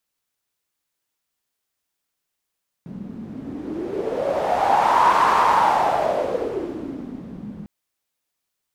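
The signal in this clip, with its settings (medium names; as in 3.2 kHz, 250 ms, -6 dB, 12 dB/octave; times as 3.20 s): wind-like swept noise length 4.80 s, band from 200 Hz, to 1 kHz, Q 5.9, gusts 1, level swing 18.5 dB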